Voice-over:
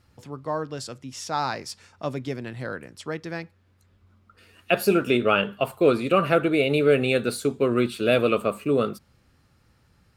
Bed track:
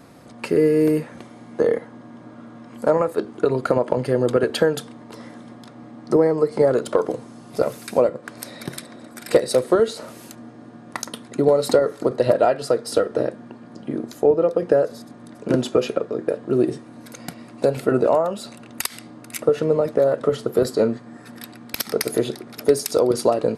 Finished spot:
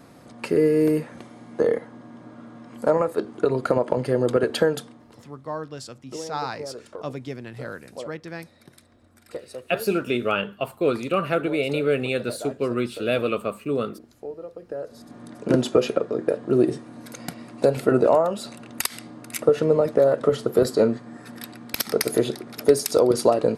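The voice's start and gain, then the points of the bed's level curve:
5.00 s, -3.0 dB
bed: 4.73 s -2 dB
5.40 s -19 dB
14.67 s -19 dB
15.17 s 0 dB

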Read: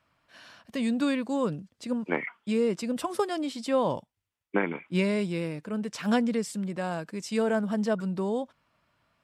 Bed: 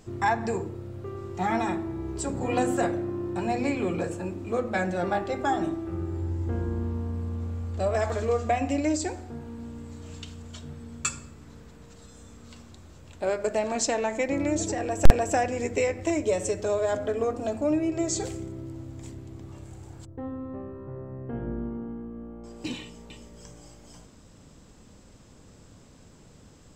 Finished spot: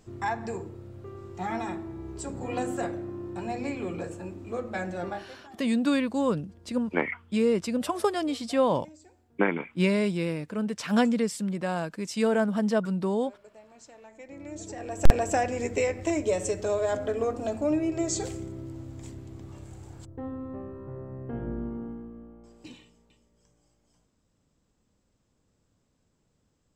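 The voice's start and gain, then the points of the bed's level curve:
4.85 s, +2.0 dB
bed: 5.08 s -5.5 dB
5.47 s -25.5 dB
13.91 s -25.5 dB
15.18 s -1 dB
21.86 s -1 dB
23.22 s -20 dB

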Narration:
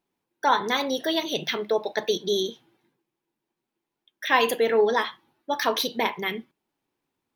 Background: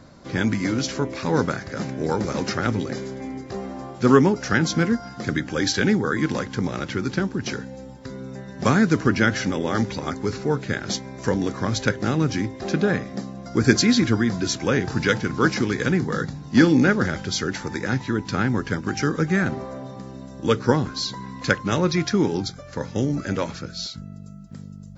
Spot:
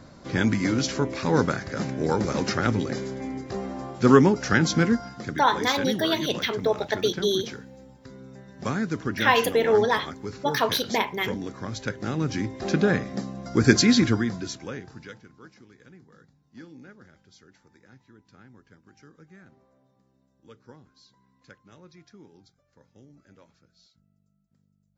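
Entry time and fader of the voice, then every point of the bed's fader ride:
4.95 s, +0.5 dB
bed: 5.00 s -0.5 dB
5.39 s -9.5 dB
11.81 s -9.5 dB
12.68 s -0.5 dB
14.04 s -0.5 dB
15.47 s -30 dB

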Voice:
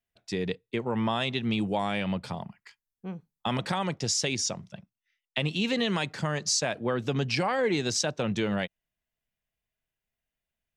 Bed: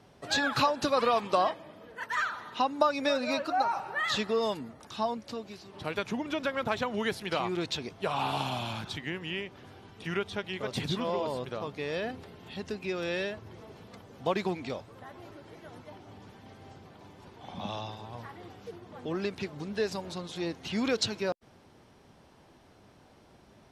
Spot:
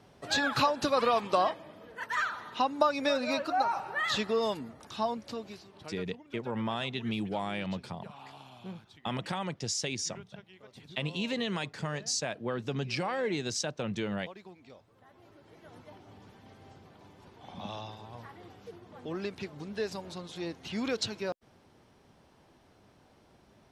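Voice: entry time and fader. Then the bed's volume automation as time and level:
5.60 s, -5.5 dB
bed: 5.54 s -0.5 dB
6.12 s -19 dB
14.53 s -19 dB
15.79 s -3.5 dB

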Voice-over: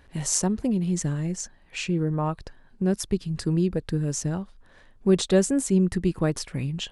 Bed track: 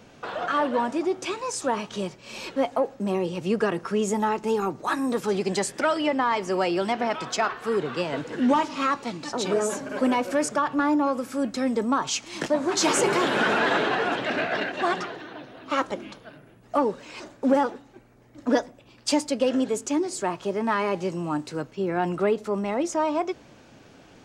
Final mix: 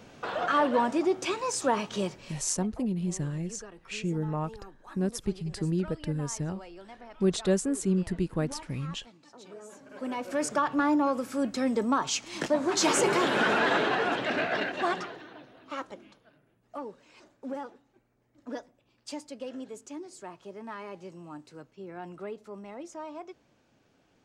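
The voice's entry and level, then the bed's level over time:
2.15 s, -5.5 dB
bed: 2.23 s -0.5 dB
2.44 s -22.5 dB
9.61 s -22.5 dB
10.52 s -2.5 dB
14.72 s -2.5 dB
16.26 s -16 dB

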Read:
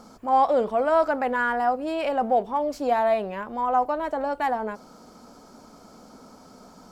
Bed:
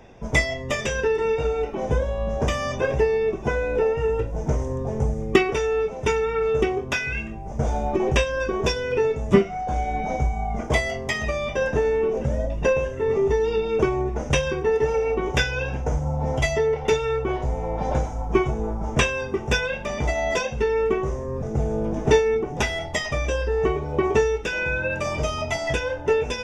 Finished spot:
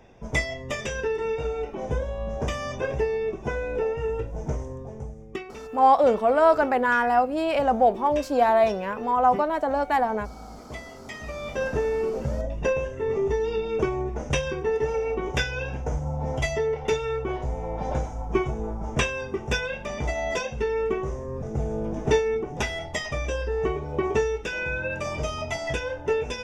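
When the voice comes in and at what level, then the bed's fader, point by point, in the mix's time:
5.50 s, +2.5 dB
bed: 4.47 s -5 dB
5.31 s -17 dB
10.91 s -17 dB
11.61 s -4 dB

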